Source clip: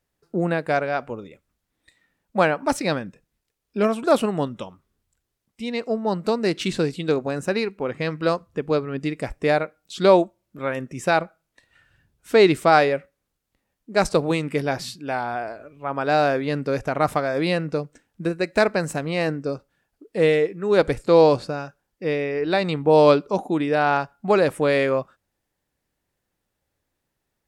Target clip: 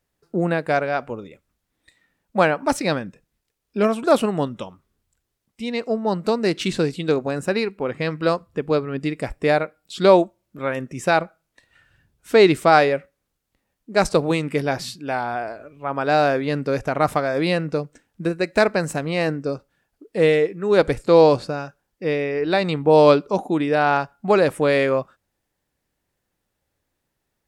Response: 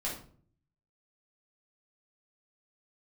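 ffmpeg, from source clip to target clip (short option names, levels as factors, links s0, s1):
-filter_complex "[0:a]asettb=1/sr,asplit=3[s0][s1][s2];[s0]atrim=end=7.314[s3];[s1]atrim=start=7.31:end=10.03,asetpts=PTS-STARTPTS,afade=t=in:d=0.004:c=qsin,afade=t=out:st=2.716:d=0.004:c=qsin,bandreject=f=6200:w=9.1[s4];[s2]atrim=start=10.026[s5];[s3][s4]acrossfade=d=0.004:c1=hsin:c2=qsin[s6];[s6][s5]acrossfade=d=0.004:c1=qsin:c2=hsin,volume=1.19"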